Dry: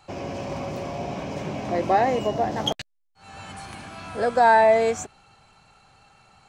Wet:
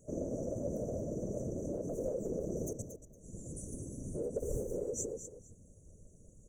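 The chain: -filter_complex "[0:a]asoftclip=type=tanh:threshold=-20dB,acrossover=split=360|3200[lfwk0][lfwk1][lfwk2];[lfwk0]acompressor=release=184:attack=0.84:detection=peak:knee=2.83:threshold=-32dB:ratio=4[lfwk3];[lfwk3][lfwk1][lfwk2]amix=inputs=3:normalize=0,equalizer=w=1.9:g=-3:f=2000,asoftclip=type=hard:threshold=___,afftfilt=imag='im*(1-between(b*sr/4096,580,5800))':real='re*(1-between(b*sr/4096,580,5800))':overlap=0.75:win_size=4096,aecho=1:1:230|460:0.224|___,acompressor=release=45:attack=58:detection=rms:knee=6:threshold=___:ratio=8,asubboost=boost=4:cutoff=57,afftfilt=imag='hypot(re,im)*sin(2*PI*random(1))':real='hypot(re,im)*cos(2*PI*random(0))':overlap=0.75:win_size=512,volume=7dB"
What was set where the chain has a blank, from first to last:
-22dB, 0.0448, -39dB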